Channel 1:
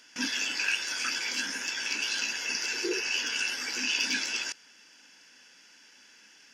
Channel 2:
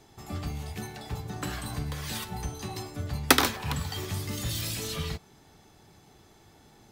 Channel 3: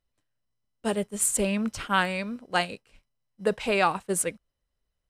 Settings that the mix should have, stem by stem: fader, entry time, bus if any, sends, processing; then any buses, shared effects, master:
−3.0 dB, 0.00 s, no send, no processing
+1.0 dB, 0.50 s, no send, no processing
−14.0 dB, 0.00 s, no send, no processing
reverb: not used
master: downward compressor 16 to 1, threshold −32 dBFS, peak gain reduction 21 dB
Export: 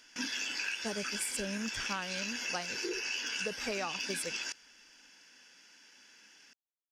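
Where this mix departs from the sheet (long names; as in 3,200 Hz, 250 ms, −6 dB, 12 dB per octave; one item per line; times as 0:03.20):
stem 2: muted
stem 3 −14.0 dB → −6.0 dB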